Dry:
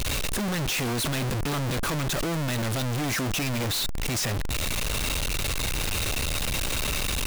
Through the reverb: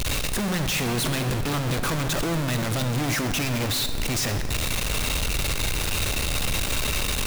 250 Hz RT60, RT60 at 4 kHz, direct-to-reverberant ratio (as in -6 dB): 3.0 s, 1.8 s, 8.0 dB